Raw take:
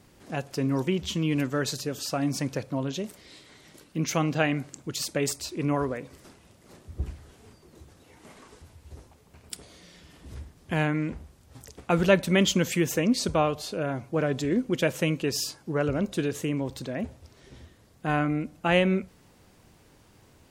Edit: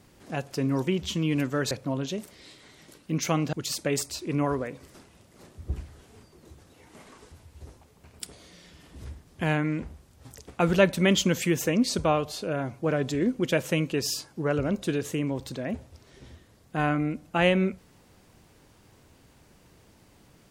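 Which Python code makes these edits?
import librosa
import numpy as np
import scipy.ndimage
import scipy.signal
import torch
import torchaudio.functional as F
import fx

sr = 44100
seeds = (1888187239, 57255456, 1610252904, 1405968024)

y = fx.edit(x, sr, fx.cut(start_s=1.71, length_s=0.86),
    fx.cut(start_s=4.39, length_s=0.44), tone=tone)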